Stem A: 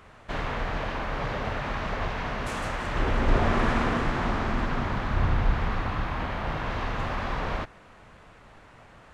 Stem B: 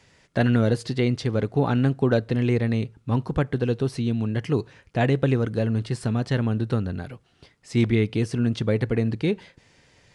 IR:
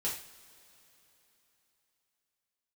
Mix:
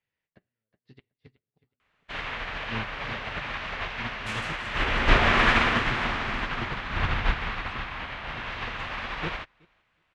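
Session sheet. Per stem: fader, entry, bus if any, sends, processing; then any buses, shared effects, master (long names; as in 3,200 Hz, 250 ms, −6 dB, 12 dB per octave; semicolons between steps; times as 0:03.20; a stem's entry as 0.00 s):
+2.5 dB, 1.80 s, no send, echo send −16.5 dB, no processing
+0.5 dB, 0.00 s, send −20 dB, echo send −8 dB, low-pass filter 1,100 Hz 6 dB per octave; gate with flip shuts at −16 dBFS, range −40 dB; flanger 1.9 Hz, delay 5.1 ms, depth 7.8 ms, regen −42%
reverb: on, pre-delay 3 ms
echo: repeating echo 370 ms, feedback 17%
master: parametric band 2,700 Hz +15 dB 2.3 octaves; expander for the loud parts 2.5 to 1, over −33 dBFS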